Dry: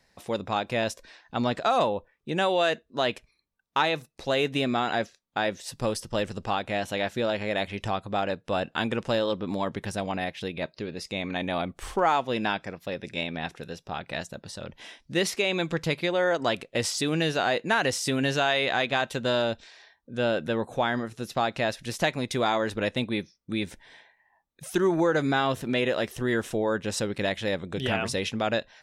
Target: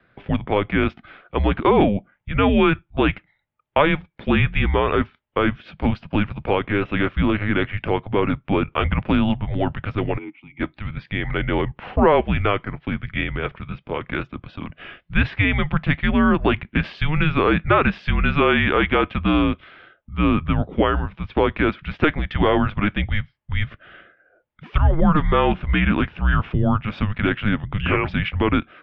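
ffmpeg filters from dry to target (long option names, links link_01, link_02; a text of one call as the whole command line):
ffmpeg -i in.wav -filter_complex "[0:a]highpass=frequency=150:width_type=q:width=0.5412,highpass=frequency=150:width_type=q:width=1.307,lowpass=frequency=3200:width_type=q:width=0.5176,lowpass=frequency=3200:width_type=q:width=0.7071,lowpass=frequency=3200:width_type=q:width=1.932,afreqshift=-310,asplit=3[link_01][link_02][link_03];[link_01]afade=type=out:start_time=10.17:duration=0.02[link_04];[link_02]asplit=3[link_05][link_06][link_07];[link_05]bandpass=frequency=300:width_type=q:width=8,volume=0dB[link_08];[link_06]bandpass=frequency=870:width_type=q:width=8,volume=-6dB[link_09];[link_07]bandpass=frequency=2240:width_type=q:width=8,volume=-9dB[link_10];[link_08][link_09][link_10]amix=inputs=3:normalize=0,afade=type=in:start_time=10.17:duration=0.02,afade=type=out:start_time=10.59:duration=0.02[link_11];[link_03]afade=type=in:start_time=10.59:duration=0.02[link_12];[link_04][link_11][link_12]amix=inputs=3:normalize=0,volume=8dB" out.wav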